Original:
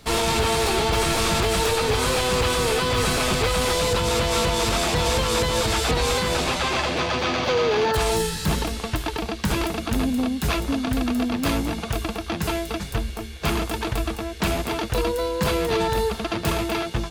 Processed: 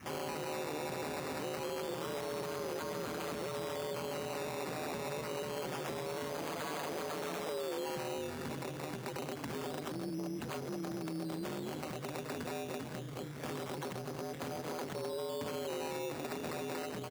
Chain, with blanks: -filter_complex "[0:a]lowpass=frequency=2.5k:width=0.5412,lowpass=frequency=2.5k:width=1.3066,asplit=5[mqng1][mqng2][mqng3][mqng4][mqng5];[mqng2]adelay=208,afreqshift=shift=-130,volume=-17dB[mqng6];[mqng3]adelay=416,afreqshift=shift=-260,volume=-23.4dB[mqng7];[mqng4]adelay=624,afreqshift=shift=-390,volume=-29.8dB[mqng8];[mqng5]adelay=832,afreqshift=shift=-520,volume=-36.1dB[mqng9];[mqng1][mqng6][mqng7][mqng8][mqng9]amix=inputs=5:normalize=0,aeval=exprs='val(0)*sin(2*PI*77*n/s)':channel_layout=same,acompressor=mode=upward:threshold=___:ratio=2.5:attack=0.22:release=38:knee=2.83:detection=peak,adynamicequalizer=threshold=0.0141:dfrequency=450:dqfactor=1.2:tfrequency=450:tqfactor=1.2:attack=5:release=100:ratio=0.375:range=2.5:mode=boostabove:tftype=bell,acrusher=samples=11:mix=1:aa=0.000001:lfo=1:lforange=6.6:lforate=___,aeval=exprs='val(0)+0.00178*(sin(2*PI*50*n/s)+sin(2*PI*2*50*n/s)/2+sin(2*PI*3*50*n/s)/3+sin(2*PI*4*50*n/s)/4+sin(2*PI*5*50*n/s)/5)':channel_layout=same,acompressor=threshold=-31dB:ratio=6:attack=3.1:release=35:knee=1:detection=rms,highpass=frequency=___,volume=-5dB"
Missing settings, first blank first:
-30dB, 0.26, 130